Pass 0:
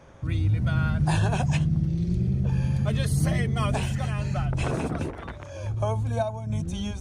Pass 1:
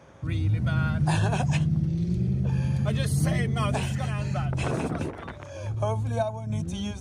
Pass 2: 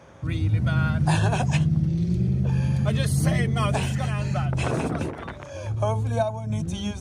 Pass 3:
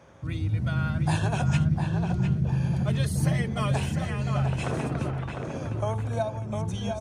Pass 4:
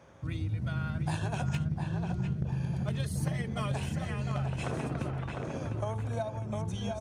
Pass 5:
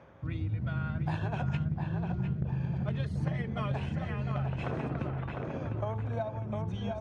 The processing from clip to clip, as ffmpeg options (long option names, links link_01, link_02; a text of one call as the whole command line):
ffmpeg -i in.wav -af "highpass=80" out.wav
ffmpeg -i in.wav -af "bandreject=frequency=49.07:width_type=h:width=4,bandreject=frequency=98.14:width_type=h:width=4,bandreject=frequency=147.21:width_type=h:width=4,bandreject=frequency=196.28:width_type=h:width=4,bandreject=frequency=245.35:width_type=h:width=4,bandreject=frequency=294.42:width_type=h:width=4,bandreject=frequency=343.49:width_type=h:width=4,bandreject=frequency=392.56:width_type=h:width=4,bandreject=frequency=441.63:width_type=h:width=4,volume=3dB" out.wav
ffmpeg -i in.wav -filter_complex "[0:a]asplit=2[link_01][link_02];[link_02]adelay=704,lowpass=frequency=2400:poles=1,volume=-4.5dB,asplit=2[link_03][link_04];[link_04]adelay=704,lowpass=frequency=2400:poles=1,volume=0.38,asplit=2[link_05][link_06];[link_06]adelay=704,lowpass=frequency=2400:poles=1,volume=0.38,asplit=2[link_07][link_08];[link_08]adelay=704,lowpass=frequency=2400:poles=1,volume=0.38,asplit=2[link_09][link_10];[link_10]adelay=704,lowpass=frequency=2400:poles=1,volume=0.38[link_11];[link_01][link_03][link_05][link_07][link_09][link_11]amix=inputs=6:normalize=0,volume=-4.5dB" out.wav
ffmpeg -i in.wav -af "acompressor=threshold=-29dB:ratio=2.5,aeval=exprs='0.1*(cos(1*acos(clip(val(0)/0.1,-1,1)))-cos(1*PI/2))+0.0141*(cos(3*acos(clip(val(0)/0.1,-1,1)))-cos(3*PI/2))+0.00631*(cos(5*acos(clip(val(0)/0.1,-1,1)))-cos(5*PI/2))+0.00282*(cos(7*acos(clip(val(0)/0.1,-1,1)))-cos(7*PI/2))':channel_layout=same" out.wav
ffmpeg -i in.wav -af "lowpass=2800,areverse,acompressor=mode=upward:threshold=-41dB:ratio=2.5,areverse" out.wav